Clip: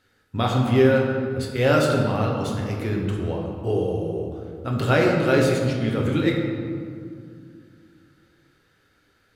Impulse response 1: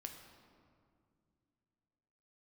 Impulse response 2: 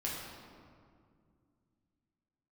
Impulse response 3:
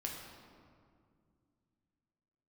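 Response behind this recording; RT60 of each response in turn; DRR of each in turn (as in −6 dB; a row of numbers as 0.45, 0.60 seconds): 3; 2.3, 2.2, 2.1 seconds; 3.5, −5.5, −1.5 decibels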